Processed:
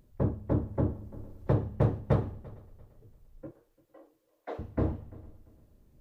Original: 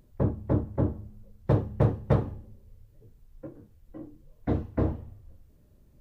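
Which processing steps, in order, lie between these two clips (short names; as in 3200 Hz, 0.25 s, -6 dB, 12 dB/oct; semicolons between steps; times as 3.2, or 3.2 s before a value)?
3.51–4.59 HPF 480 Hz 24 dB/oct; multi-head echo 0.114 s, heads first and third, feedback 43%, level -22.5 dB; 0.51–1.69 three-band squash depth 40%; gain -2.5 dB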